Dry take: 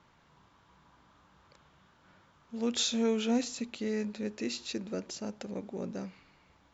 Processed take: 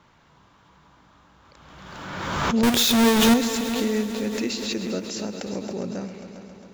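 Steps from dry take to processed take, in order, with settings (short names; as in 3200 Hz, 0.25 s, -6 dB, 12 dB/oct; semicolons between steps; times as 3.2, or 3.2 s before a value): 2.63–3.34 half-waves squared off; multi-head echo 0.135 s, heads all three, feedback 61%, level -16 dB; backwards sustainer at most 32 dB/s; gain +6.5 dB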